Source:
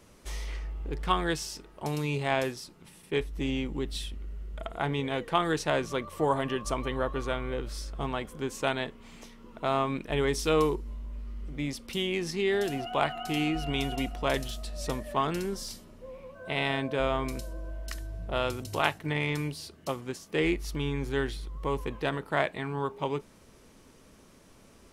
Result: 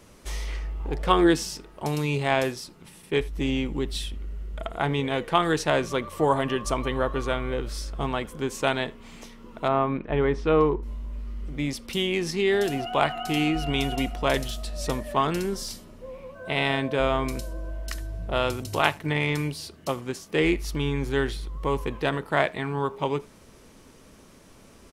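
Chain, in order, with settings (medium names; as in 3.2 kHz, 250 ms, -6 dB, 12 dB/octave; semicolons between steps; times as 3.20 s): 0.79–1.54 s: peaking EQ 1.1 kHz -> 160 Hz +14 dB 0.44 oct; 9.68–10.83 s: low-pass 1.8 kHz 12 dB/octave; speakerphone echo 80 ms, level -23 dB; trim +4.5 dB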